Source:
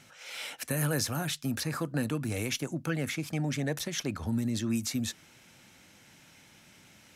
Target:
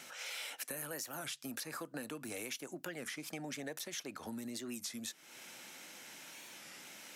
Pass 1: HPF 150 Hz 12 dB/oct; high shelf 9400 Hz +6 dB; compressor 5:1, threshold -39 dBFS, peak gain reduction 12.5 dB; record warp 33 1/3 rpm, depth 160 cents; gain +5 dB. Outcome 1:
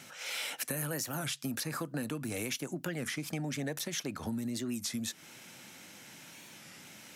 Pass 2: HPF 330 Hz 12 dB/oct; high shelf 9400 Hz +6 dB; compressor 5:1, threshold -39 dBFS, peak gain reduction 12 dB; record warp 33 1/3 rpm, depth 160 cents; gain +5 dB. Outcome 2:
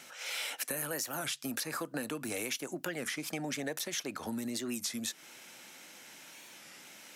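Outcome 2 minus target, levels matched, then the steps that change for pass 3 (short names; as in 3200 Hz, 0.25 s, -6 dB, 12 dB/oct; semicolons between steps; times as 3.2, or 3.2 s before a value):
compressor: peak gain reduction -6.5 dB
change: compressor 5:1, threshold -47 dBFS, peak gain reduction 18.5 dB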